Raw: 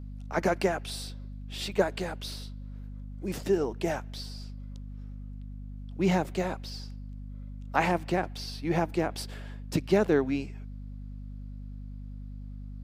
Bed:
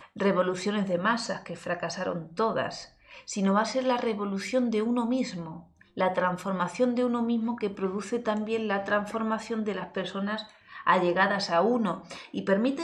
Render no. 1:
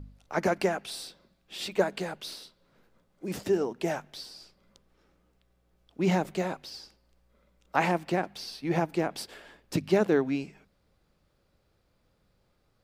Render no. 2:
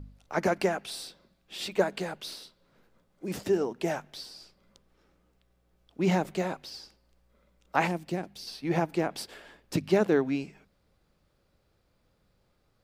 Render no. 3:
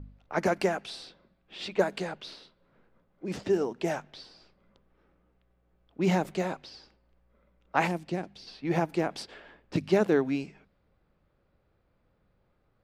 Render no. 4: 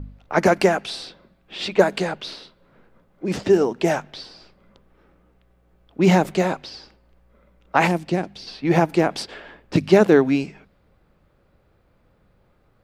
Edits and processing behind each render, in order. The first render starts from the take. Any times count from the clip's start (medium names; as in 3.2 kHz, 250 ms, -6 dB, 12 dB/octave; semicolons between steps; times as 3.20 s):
de-hum 50 Hz, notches 5
7.87–8.47 s: peaking EQ 1.2 kHz -10.5 dB 2.8 oct
level-controlled noise filter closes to 2.3 kHz, open at -24 dBFS
trim +10 dB; peak limiter -2 dBFS, peak gain reduction 3 dB